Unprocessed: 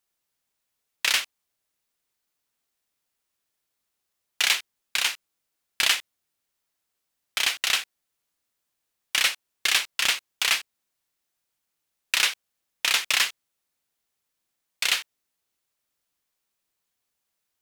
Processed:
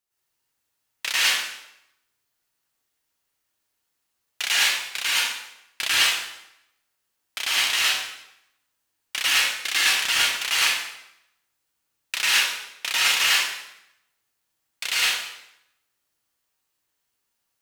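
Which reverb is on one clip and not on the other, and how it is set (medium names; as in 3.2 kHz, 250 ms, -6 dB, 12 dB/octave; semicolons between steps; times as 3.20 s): plate-style reverb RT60 0.85 s, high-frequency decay 0.85×, pre-delay 95 ms, DRR -9 dB; trim -5.5 dB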